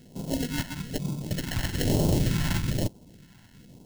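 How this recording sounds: aliases and images of a low sample rate 1.2 kHz, jitter 0%; phasing stages 2, 1.1 Hz, lowest notch 450–1700 Hz

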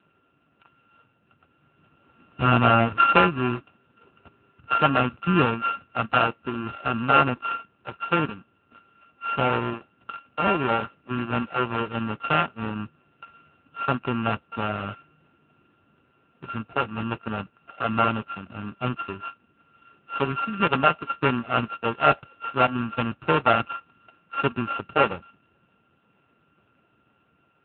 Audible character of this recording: a buzz of ramps at a fixed pitch in blocks of 32 samples; AMR-NB

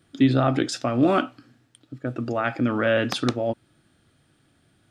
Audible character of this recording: noise floor -64 dBFS; spectral tilt -5.0 dB/octave

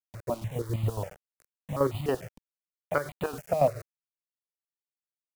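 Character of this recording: chopped level 7.2 Hz, depth 65%, duty 45%; a quantiser's noise floor 8-bit, dither none; notches that jump at a steady rate 6.8 Hz 380–1600 Hz

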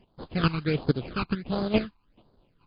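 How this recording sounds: aliases and images of a low sample rate 1.9 kHz, jitter 20%; chopped level 2.3 Hz, depth 65%, duty 10%; phasing stages 12, 1.4 Hz, lowest notch 550–2500 Hz; MP3

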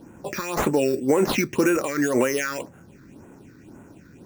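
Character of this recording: aliases and images of a low sample rate 8.2 kHz, jitter 0%; phasing stages 6, 1.9 Hz, lowest notch 740–4700 Hz

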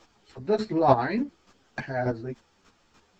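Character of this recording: chopped level 3.4 Hz, depth 60%, duty 15%; a shimmering, thickened sound

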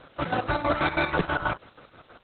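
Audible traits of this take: chopped level 6.2 Hz, depth 65%, duty 50%; a quantiser's noise floor 10-bit, dither triangular; Opus

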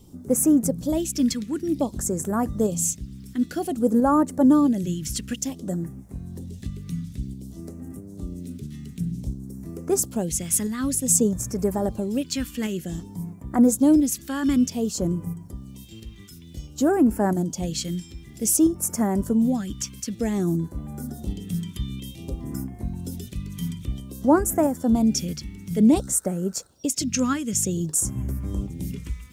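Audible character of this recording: a quantiser's noise floor 12-bit, dither none; phasing stages 2, 0.54 Hz, lowest notch 670–3400 Hz; tremolo saw up 1.5 Hz, depth 35%

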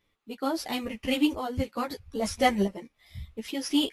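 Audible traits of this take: tremolo saw up 0.75 Hz, depth 65%; a shimmering, thickened sound

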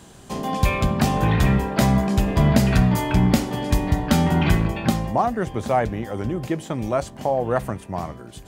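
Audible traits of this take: noise floor -43 dBFS; spectral tilt -6.5 dB/octave

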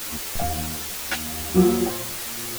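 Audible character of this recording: tremolo triangle 0.78 Hz, depth 95%; a quantiser's noise floor 6-bit, dither triangular; a shimmering, thickened sound

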